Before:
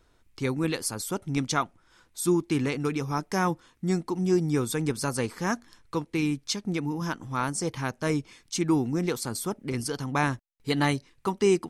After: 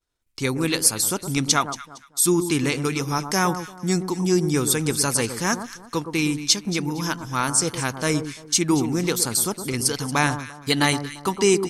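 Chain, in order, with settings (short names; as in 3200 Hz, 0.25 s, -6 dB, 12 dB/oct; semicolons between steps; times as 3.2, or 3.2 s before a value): expander -49 dBFS; high shelf 2700 Hz +11.5 dB; echo with dull and thin repeats by turns 0.115 s, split 1300 Hz, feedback 50%, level -9 dB; gain +3 dB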